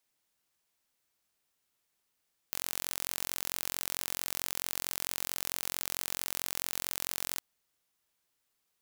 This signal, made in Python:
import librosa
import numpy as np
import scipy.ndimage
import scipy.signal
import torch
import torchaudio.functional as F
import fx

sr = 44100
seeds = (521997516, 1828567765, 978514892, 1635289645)

y = 10.0 ** (-7.0 / 20.0) * (np.mod(np.arange(round(4.87 * sr)), round(sr / 44.5)) == 0)